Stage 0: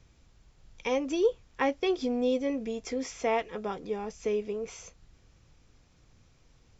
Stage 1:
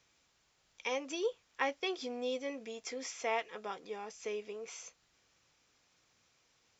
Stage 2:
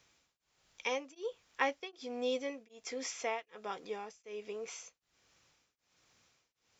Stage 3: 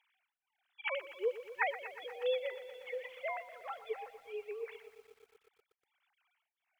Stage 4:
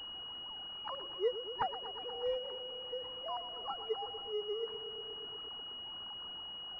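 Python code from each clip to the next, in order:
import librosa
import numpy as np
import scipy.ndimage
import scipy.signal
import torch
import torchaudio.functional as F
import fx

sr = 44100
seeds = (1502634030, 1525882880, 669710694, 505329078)

y1 = fx.highpass(x, sr, hz=1100.0, slope=6)
y1 = F.gain(torch.from_numpy(y1), -1.0).numpy()
y2 = y1 * np.abs(np.cos(np.pi * 1.3 * np.arange(len(y1)) / sr))
y2 = F.gain(torch.from_numpy(y2), 2.5).numpy()
y3 = fx.sine_speech(y2, sr)
y3 = scipy.signal.sosfilt(scipy.signal.butter(2, 700.0, 'highpass', fs=sr, output='sos'), y3)
y3 = fx.echo_crushed(y3, sr, ms=120, feedback_pct=80, bits=11, wet_db=-14)
y3 = F.gain(torch.from_numpy(y3), 5.5).numpy()
y4 = y3 + 0.5 * 10.0 ** (-46.5 / 20.0) * np.sign(y3)
y4 = fx.fixed_phaser(y4, sr, hz=590.0, stages=6)
y4 = fx.pwm(y4, sr, carrier_hz=2900.0)
y4 = F.gain(torch.from_numpy(y4), 4.0).numpy()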